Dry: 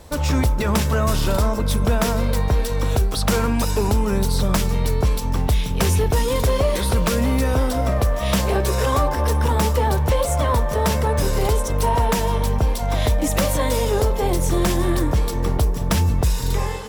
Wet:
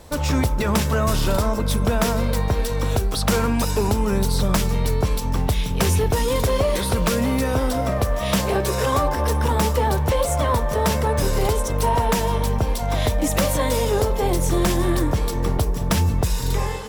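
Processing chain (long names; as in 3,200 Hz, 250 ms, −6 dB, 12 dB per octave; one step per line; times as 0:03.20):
parametric band 60 Hz −12.5 dB 0.25 octaves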